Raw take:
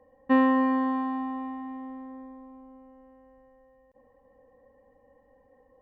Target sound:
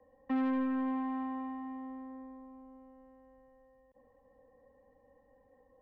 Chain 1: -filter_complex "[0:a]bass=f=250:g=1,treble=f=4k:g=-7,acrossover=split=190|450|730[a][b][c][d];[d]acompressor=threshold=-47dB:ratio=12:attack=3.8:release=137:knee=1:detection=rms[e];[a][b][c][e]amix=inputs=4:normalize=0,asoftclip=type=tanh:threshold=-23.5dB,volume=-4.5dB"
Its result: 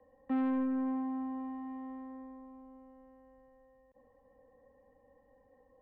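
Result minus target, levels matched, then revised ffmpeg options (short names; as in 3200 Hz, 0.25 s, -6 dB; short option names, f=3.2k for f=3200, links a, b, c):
compressor: peak gain reduction +11 dB
-filter_complex "[0:a]bass=f=250:g=1,treble=f=4k:g=-7,acrossover=split=190|450|730[a][b][c][d];[d]acompressor=threshold=-35dB:ratio=12:attack=3.8:release=137:knee=1:detection=rms[e];[a][b][c][e]amix=inputs=4:normalize=0,asoftclip=type=tanh:threshold=-23.5dB,volume=-4.5dB"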